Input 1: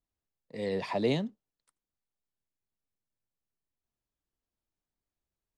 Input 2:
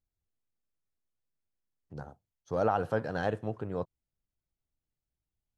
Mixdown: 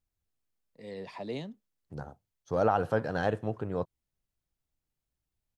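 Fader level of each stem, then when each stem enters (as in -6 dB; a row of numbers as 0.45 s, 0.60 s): -9.0 dB, +2.0 dB; 0.25 s, 0.00 s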